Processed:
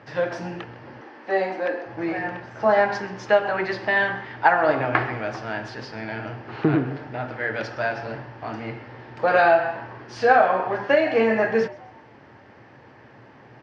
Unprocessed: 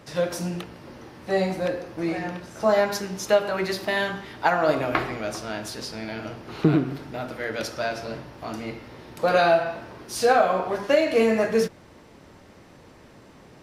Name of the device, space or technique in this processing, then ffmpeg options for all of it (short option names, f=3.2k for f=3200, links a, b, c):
frequency-shifting delay pedal into a guitar cabinet: -filter_complex "[0:a]asplit=4[a][b][c][d];[b]adelay=130,afreqshift=150,volume=-21dB[e];[c]adelay=260,afreqshift=300,volume=-29.2dB[f];[d]adelay=390,afreqshift=450,volume=-37.4dB[g];[a][e][f][g]amix=inputs=4:normalize=0,highpass=110,equalizer=f=120:t=q:w=4:g=10,equalizer=f=170:t=q:w=4:g=-7,equalizer=f=840:t=q:w=4:g=6,equalizer=f=1.7k:t=q:w=4:g=8,equalizer=f=3.8k:t=q:w=4:g=-8,lowpass=f=4.4k:w=0.5412,lowpass=f=4.4k:w=1.3066,asettb=1/sr,asplit=3[h][i][j];[h]atrim=end=1.014[k];[i]atrim=start=1.01:end=1.86,asetpts=PTS-STARTPTS,afade=t=in:d=0.004:c=qsin,afade=t=out:st=0.846:d=0.004:c=qsin,highpass=f=240:w=0.5412,highpass=f=240:w=1.3066[l];[j]atrim=start=1.856[m];[k][l]acrossfade=d=0.004:c1=hsin:c2=qsin[n];[n][m]acrossfade=d=0.004:c1=qsin:c2=hsin"